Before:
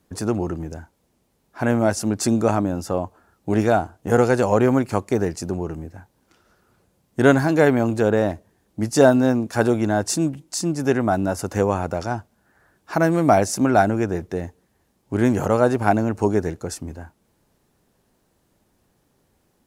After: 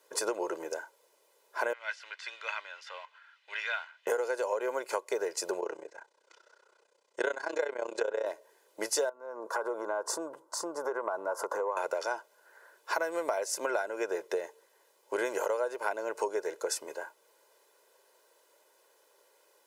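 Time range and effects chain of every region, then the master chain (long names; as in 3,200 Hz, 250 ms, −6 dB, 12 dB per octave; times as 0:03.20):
0:01.73–0:04.07: mu-law and A-law mismatch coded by mu + de-essing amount 70% + flat-topped band-pass 2,500 Hz, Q 1.3
0:05.60–0:08.26: low-pass filter 7,900 Hz 24 dB per octave + amplitude modulation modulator 31 Hz, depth 80%
0:09.09–0:11.77: high-pass filter 40 Hz + high shelf with overshoot 1,700 Hz −12.5 dB, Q 3 + downward compressor 16 to 1, threshold −24 dBFS
whole clip: high-pass filter 450 Hz 24 dB per octave; comb filter 2 ms, depth 66%; downward compressor 12 to 1, threshold −30 dBFS; level +2 dB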